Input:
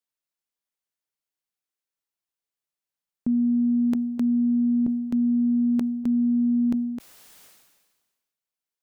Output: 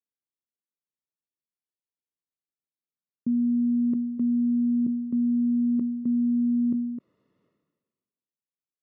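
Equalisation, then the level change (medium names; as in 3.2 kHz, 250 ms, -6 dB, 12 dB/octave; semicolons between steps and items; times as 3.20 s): boxcar filter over 56 samples; high-pass 120 Hz; distance through air 180 m; 0.0 dB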